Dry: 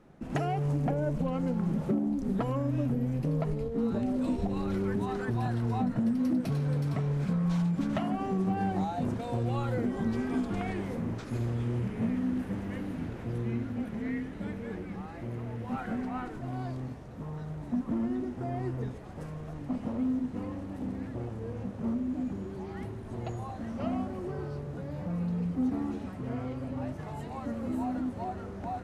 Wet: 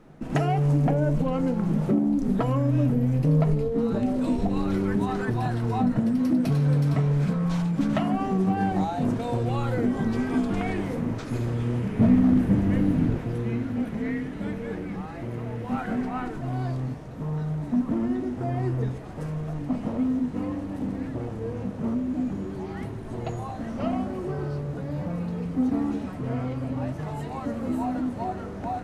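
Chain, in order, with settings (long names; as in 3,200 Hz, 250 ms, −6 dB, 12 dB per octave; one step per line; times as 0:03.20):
0:11.99–0:13.19: low-shelf EQ 370 Hz +10.5 dB
gain into a clipping stage and back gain 18 dB
on a send: convolution reverb RT60 0.25 s, pre-delay 3 ms, DRR 11 dB
on the sum: level +5.5 dB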